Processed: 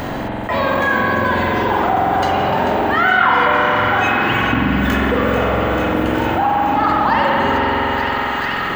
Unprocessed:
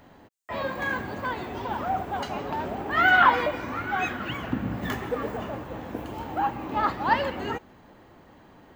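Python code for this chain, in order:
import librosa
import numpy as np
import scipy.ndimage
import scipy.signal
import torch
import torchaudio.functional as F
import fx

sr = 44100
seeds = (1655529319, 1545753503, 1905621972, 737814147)

p1 = x + fx.echo_wet_highpass(x, sr, ms=440, feedback_pct=79, hz=1700.0, wet_db=-11.0, dry=0)
p2 = fx.rev_spring(p1, sr, rt60_s=2.6, pass_ms=(45,), chirp_ms=75, drr_db=-3.0)
y = fx.env_flatten(p2, sr, amount_pct=70)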